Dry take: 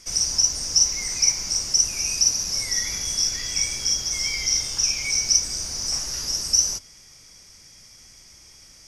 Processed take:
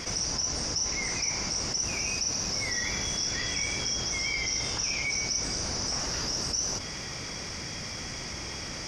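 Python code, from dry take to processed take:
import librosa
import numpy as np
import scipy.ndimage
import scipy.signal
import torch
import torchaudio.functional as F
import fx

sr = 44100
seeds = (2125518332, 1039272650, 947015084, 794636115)

y = fx.highpass(x, sr, hz=120.0, slope=6)
y = fx.spacing_loss(y, sr, db_at_10k=23)
y = fx.env_flatten(y, sr, amount_pct=70)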